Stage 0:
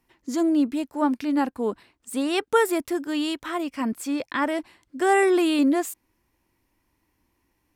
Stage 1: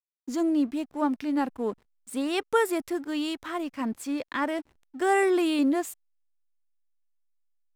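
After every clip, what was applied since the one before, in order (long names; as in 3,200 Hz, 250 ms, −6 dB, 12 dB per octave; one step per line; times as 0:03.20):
slack as between gear wheels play −41.5 dBFS
level −3.5 dB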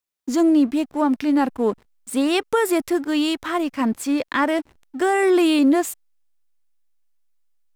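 brickwall limiter −19 dBFS, peak gain reduction 8.5 dB
level +9 dB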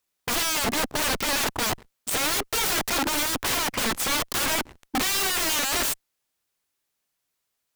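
harmonic generator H 4 −19 dB, 5 −30 dB, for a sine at −9.5 dBFS
wrap-around overflow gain 26.5 dB
level +6.5 dB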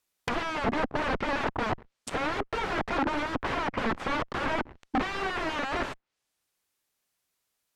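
treble cut that deepens with the level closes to 1,700 Hz, closed at −27 dBFS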